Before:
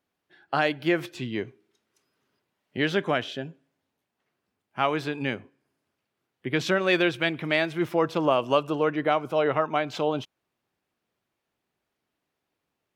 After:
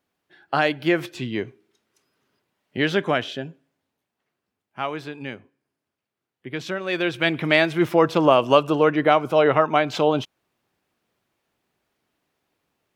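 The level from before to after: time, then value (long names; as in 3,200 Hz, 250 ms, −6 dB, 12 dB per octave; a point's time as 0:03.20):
0:03.24 +3.5 dB
0:05.18 −4.5 dB
0:06.87 −4.5 dB
0:07.34 +6.5 dB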